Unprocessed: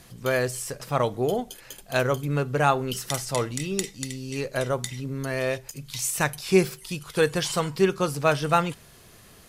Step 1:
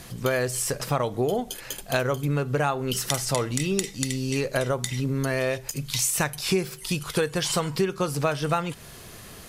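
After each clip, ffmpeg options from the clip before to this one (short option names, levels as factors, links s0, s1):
-af "acompressor=threshold=0.0355:ratio=6,volume=2.37"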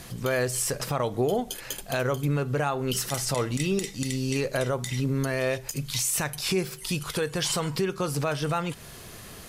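-af "alimiter=limit=0.15:level=0:latency=1:release=30"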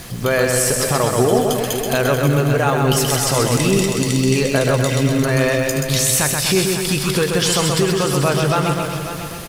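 -filter_complex "[0:a]asplit=2[s0][s1];[s1]aecho=0:1:130|247|352.3|447.1|532.4:0.631|0.398|0.251|0.158|0.1[s2];[s0][s2]amix=inputs=2:normalize=0,acrusher=bits=8:mix=0:aa=0.000001,asplit=2[s3][s4];[s4]aecho=0:1:548:0.299[s5];[s3][s5]amix=inputs=2:normalize=0,volume=2.66"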